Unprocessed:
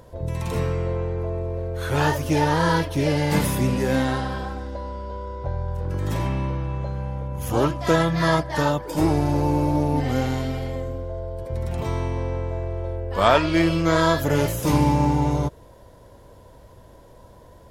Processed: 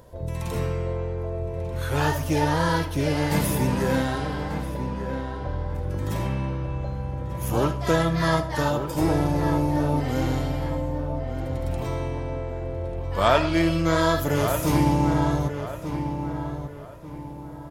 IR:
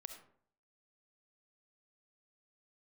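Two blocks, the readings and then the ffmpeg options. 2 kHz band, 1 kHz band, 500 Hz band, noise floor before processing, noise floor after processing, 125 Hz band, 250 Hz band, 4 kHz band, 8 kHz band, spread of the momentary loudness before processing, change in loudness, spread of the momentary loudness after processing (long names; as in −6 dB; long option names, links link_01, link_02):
−2.0 dB, −2.0 dB, −2.0 dB, −48 dBFS, −37 dBFS, −1.5 dB, −1.5 dB, −2.0 dB, −0.5 dB, 11 LU, −2.0 dB, 10 LU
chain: -filter_complex "[0:a]asplit=2[link_01][link_02];[link_02]adelay=1191,lowpass=frequency=2400:poles=1,volume=-8dB,asplit=2[link_03][link_04];[link_04]adelay=1191,lowpass=frequency=2400:poles=1,volume=0.36,asplit=2[link_05][link_06];[link_06]adelay=1191,lowpass=frequency=2400:poles=1,volume=0.36,asplit=2[link_07][link_08];[link_08]adelay=1191,lowpass=frequency=2400:poles=1,volume=0.36[link_09];[link_01][link_03][link_05][link_07][link_09]amix=inputs=5:normalize=0,asplit=2[link_10][link_11];[1:a]atrim=start_sample=2205,highshelf=frequency=8800:gain=10[link_12];[link_11][link_12]afir=irnorm=-1:irlink=0,volume=3dB[link_13];[link_10][link_13]amix=inputs=2:normalize=0,volume=-7.5dB"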